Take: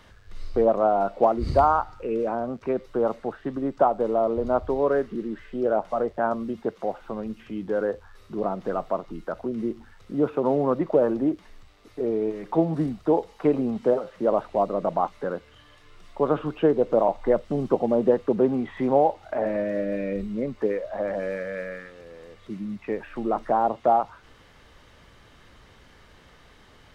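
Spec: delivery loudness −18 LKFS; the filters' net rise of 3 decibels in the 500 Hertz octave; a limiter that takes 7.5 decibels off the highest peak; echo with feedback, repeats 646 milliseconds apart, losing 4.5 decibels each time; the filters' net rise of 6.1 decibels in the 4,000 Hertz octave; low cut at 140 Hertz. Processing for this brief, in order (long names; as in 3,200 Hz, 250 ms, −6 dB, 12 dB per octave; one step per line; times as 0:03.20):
high-pass filter 140 Hz
parametric band 500 Hz +3.5 dB
parametric band 4,000 Hz +8 dB
brickwall limiter −11.5 dBFS
repeating echo 646 ms, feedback 60%, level −4.5 dB
level +5.5 dB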